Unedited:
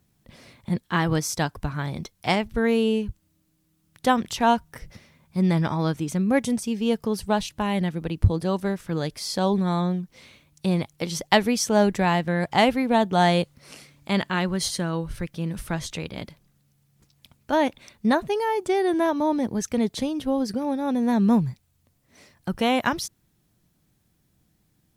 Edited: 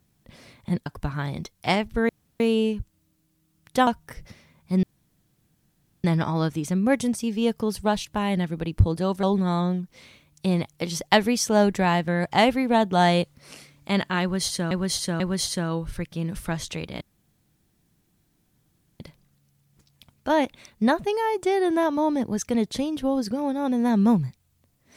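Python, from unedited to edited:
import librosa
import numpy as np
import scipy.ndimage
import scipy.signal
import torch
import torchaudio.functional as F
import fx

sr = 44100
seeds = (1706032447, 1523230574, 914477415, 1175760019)

y = fx.edit(x, sr, fx.cut(start_s=0.86, length_s=0.6),
    fx.insert_room_tone(at_s=2.69, length_s=0.31),
    fx.cut(start_s=4.16, length_s=0.36),
    fx.insert_room_tone(at_s=5.48, length_s=1.21),
    fx.cut(start_s=8.67, length_s=0.76),
    fx.repeat(start_s=14.42, length_s=0.49, count=3),
    fx.insert_room_tone(at_s=16.23, length_s=1.99), tone=tone)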